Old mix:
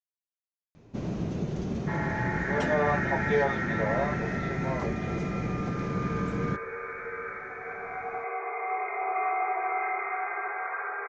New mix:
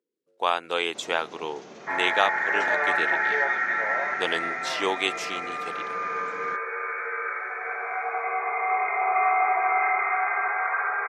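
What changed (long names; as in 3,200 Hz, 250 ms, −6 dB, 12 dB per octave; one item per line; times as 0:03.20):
speech: unmuted
second sound +8.0 dB
master: add high-pass filter 660 Hz 12 dB per octave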